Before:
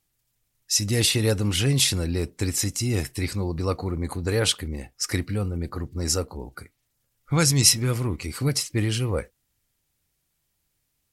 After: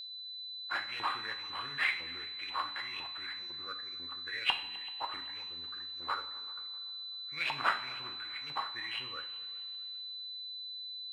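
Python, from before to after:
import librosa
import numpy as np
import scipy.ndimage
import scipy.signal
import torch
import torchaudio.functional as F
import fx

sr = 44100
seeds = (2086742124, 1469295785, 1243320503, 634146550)

p1 = fx.peak_eq(x, sr, hz=790.0, db=-13.5, octaves=0.93)
p2 = fx.sample_hold(p1, sr, seeds[0], rate_hz=6000.0, jitter_pct=0)
p3 = fx.filter_lfo_bandpass(p2, sr, shape='saw_up', hz=2.0, low_hz=910.0, high_hz=2800.0, q=6.3)
p4 = p3 + 10.0 ** (-41.0 / 20.0) * np.sin(2.0 * np.pi * 4000.0 * np.arange(len(p3)) / sr)
p5 = p4 + fx.echo_heads(p4, sr, ms=128, heads='second and third', feedback_pct=43, wet_db=-22.0, dry=0)
y = fx.rev_double_slope(p5, sr, seeds[1], early_s=0.53, late_s=2.8, knee_db=-19, drr_db=5.5)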